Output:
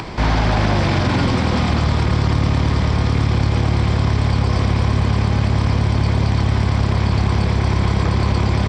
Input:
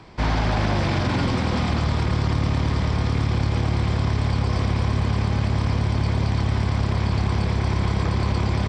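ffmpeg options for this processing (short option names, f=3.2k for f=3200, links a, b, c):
-af "acompressor=mode=upward:threshold=-24dB:ratio=2.5,volume=5dB"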